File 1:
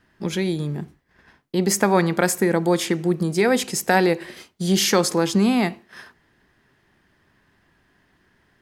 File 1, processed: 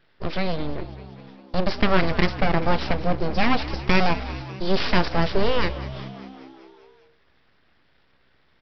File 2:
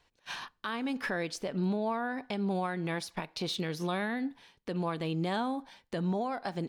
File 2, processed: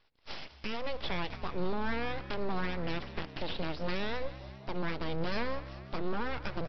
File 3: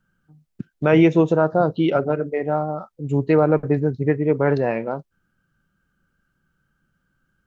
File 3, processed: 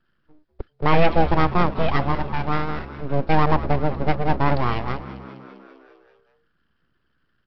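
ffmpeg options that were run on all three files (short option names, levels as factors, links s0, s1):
-filter_complex "[0:a]bandreject=f=3000:w=12,aresample=11025,aeval=exprs='abs(val(0))':c=same,aresample=44100,asplit=8[s0][s1][s2][s3][s4][s5][s6][s7];[s1]adelay=198,afreqshift=66,volume=0.168[s8];[s2]adelay=396,afreqshift=132,volume=0.106[s9];[s3]adelay=594,afreqshift=198,volume=0.0668[s10];[s4]adelay=792,afreqshift=264,volume=0.0422[s11];[s5]adelay=990,afreqshift=330,volume=0.0263[s12];[s6]adelay=1188,afreqshift=396,volume=0.0166[s13];[s7]adelay=1386,afreqshift=462,volume=0.0105[s14];[s0][s8][s9][s10][s11][s12][s13][s14]amix=inputs=8:normalize=0,volume=1.12"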